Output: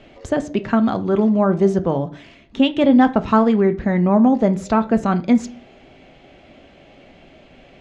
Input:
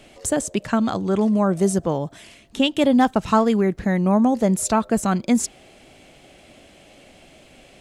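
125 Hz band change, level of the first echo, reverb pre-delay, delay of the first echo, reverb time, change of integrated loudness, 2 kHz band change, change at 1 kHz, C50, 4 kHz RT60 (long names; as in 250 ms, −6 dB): +2.5 dB, no echo audible, 3 ms, no echo audible, 0.45 s, +3.0 dB, +1.5 dB, +2.0 dB, 17.5 dB, 0.55 s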